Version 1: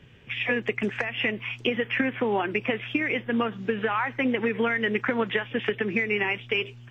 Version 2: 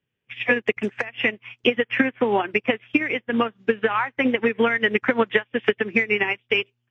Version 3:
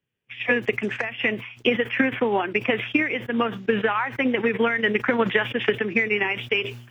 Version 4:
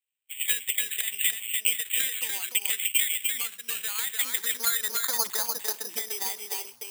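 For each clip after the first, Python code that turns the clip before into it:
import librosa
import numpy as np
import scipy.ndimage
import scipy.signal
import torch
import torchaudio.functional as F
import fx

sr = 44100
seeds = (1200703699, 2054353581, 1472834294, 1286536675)

y1 = fx.low_shelf(x, sr, hz=94.0, db=-11.5)
y1 = fx.upward_expand(y1, sr, threshold_db=-45.0, expansion=2.5)
y1 = y1 * 10.0 ** (9.0 / 20.0)
y2 = fx.sustainer(y1, sr, db_per_s=90.0)
y2 = y2 * 10.0 ** (-2.0 / 20.0)
y3 = fx.filter_sweep_bandpass(y2, sr, from_hz=2500.0, to_hz=900.0, start_s=3.89, end_s=5.3, q=2.7)
y3 = y3 + 10.0 ** (-4.0 / 20.0) * np.pad(y3, (int(296 * sr / 1000.0), 0))[:len(y3)]
y3 = (np.kron(y3[::8], np.eye(8)[0]) * 8)[:len(y3)]
y3 = y3 * 10.0 ** (-7.0 / 20.0)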